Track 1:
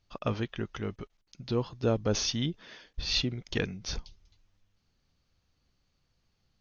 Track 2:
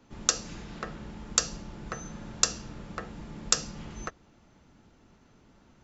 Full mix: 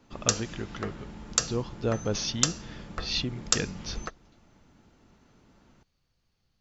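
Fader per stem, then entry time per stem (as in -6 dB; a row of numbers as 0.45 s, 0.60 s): -1.0 dB, -0.5 dB; 0.00 s, 0.00 s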